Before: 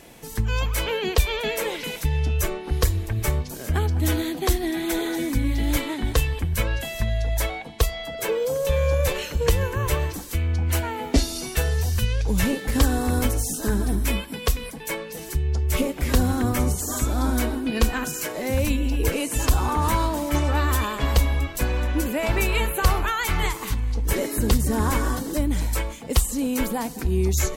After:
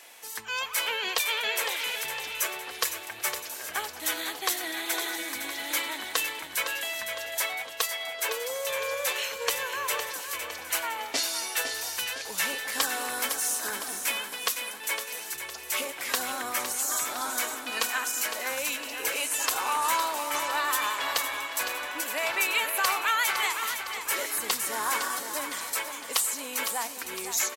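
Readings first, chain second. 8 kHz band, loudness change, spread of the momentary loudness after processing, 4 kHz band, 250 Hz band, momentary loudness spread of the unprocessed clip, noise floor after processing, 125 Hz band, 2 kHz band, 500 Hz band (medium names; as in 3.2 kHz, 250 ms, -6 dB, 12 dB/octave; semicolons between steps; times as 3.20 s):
+1.5 dB, -4.0 dB, 6 LU, +1.5 dB, -19.5 dB, 5 LU, -41 dBFS, under -35 dB, +1.5 dB, -9.5 dB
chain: high-pass 960 Hz 12 dB/octave; on a send: feedback delay 509 ms, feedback 51%, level -8.5 dB; on the sum: trim +1 dB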